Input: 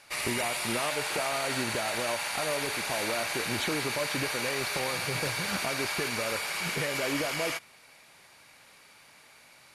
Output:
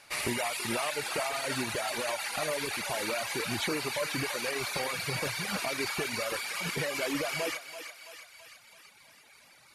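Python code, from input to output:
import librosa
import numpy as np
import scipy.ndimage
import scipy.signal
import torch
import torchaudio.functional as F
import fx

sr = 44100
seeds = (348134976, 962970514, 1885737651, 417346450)

y = fx.echo_thinned(x, sr, ms=331, feedback_pct=61, hz=570.0, wet_db=-6)
y = fx.dereverb_blind(y, sr, rt60_s=1.8)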